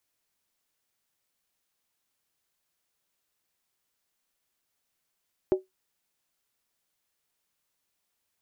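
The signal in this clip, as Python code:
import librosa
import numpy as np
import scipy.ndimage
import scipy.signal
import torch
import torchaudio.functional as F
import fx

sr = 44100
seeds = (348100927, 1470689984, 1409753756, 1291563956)

y = fx.strike_skin(sr, length_s=0.63, level_db=-15, hz=376.0, decay_s=0.16, tilt_db=11.0, modes=5)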